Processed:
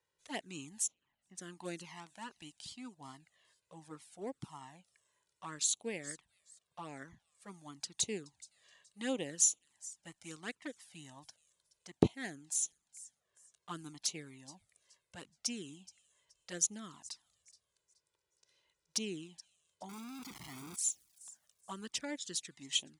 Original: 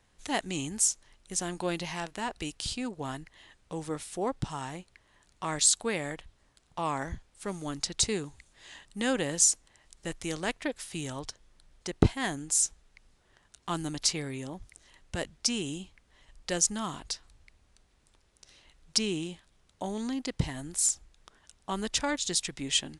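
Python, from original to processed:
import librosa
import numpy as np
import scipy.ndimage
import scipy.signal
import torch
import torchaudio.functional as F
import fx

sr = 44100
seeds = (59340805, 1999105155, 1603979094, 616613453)

p1 = fx.clip_1bit(x, sr, at=(19.89, 20.76))
p2 = scipy.signal.sosfilt(scipy.signal.butter(2, 160.0, 'highpass', fs=sr, output='sos'), p1)
p3 = p2 + fx.echo_wet_highpass(p2, sr, ms=424, feedback_pct=31, hz=5400.0, wet_db=-11.0, dry=0)
p4 = fx.env_flanger(p3, sr, rest_ms=2.1, full_db=-24.0)
p5 = fx.air_absorb(p4, sr, metres=460.0, at=(0.86, 1.37), fade=0.02)
p6 = fx.upward_expand(p5, sr, threshold_db=-42.0, expansion=1.5)
y = p6 * 10.0 ** (-1.5 / 20.0)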